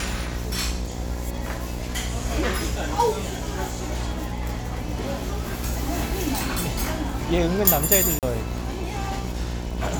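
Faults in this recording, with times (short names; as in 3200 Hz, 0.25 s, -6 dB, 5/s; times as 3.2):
buzz 60 Hz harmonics 17 -30 dBFS
crackle 60/s -30 dBFS
8.19–8.23 gap 38 ms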